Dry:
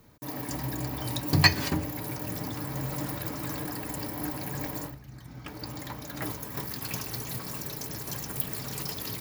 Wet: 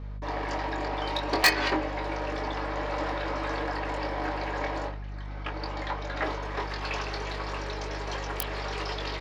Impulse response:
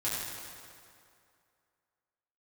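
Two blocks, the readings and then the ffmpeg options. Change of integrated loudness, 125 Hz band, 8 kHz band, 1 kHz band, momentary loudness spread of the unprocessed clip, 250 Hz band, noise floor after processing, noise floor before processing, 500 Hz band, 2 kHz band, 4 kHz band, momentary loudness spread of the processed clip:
+0.5 dB, -4.5 dB, -5.0 dB, +8.0 dB, 10 LU, -2.0 dB, -37 dBFS, -46 dBFS, +7.5 dB, +4.0 dB, -0.5 dB, 7 LU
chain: -filter_complex "[0:a]highpass=f=390:w=0.5412,highpass=f=390:w=1.3066,highshelf=f=5200:g=-10,aeval=exprs='val(0)+0.00447*(sin(2*PI*50*n/s)+sin(2*PI*2*50*n/s)/2+sin(2*PI*3*50*n/s)/3+sin(2*PI*4*50*n/s)/4+sin(2*PI*5*50*n/s)/5)':c=same,acrossover=split=5000[s0][s1];[s0]asoftclip=type=tanh:threshold=0.0596[s2];[s1]acrusher=bits=3:mix=0:aa=0.5[s3];[s2][s3]amix=inputs=2:normalize=0,asplit=2[s4][s5];[s5]adelay=22,volume=0.473[s6];[s4][s6]amix=inputs=2:normalize=0,volume=2.82"

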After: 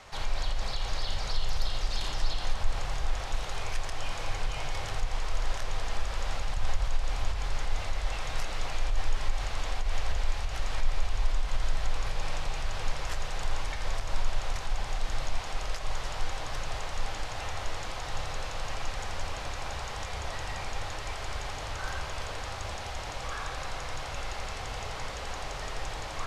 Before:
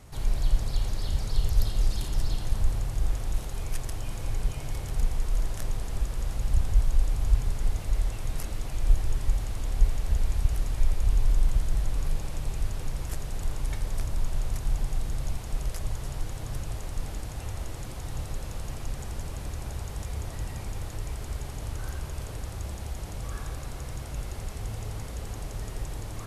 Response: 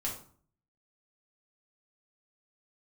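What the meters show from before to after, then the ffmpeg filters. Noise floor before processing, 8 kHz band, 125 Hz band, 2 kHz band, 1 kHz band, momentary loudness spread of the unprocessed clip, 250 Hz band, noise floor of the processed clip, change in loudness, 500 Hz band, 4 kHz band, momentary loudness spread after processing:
-38 dBFS, 0.0 dB, -7.0 dB, +8.5 dB, +8.0 dB, 9 LU, -6.0 dB, -38 dBFS, -3.0 dB, +3.0 dB, +7.0 dB, 3 LU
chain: -filter_complex "[0:a]acrossover=split=550 6100:gain=0.112 1 0.0794[s0][s1][s2];[s0][s1][s2]amix=inputs=3:normalize=0,alimiter=level_in=3.35:limit=0.0631:level=0:latency=1:release=117,volume=0.299,asplit=2[s3][s4];[1:a]atrim=start_sample=2205,lowshelf=f=140:g=11.5[s5];[s4][s5]afir=irnorm=-1:irlink=0,volume=0.299[s6];[s3][s6]amix=inputs=2:normalize=0,volume=2.37"

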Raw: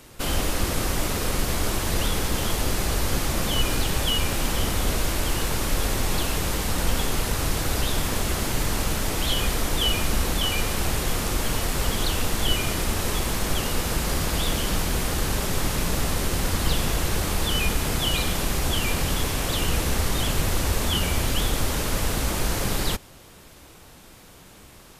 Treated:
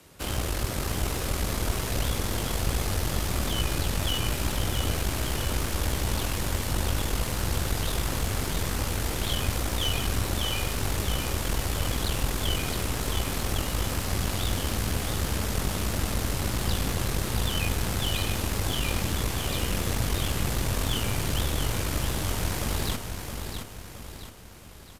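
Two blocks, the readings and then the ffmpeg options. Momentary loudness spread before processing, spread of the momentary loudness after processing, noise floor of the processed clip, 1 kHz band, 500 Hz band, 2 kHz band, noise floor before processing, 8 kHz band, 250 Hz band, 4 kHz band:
2 LU, 2 LU, -41 dBFS, -4.5 dB, -4.0 dB, -4.5 dB, -48 dBFS, -4.5 dB, -3.5 dB, -4.5 dB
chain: -filter_complex "[0:a]afreqshift=36,aeval=exprs='(tanh(7.08*val(0)+0.7)-tanh(0.7))/7.08':c=same,asplit=2[s0][s1];[s1]aecho=0:1:668|1336|2004|2672|3340:0.473|0.213|0.0958|0.0431|0.0194[s2];[s0][s2]amix=inputs=2:normalize=0,volume=0.794"

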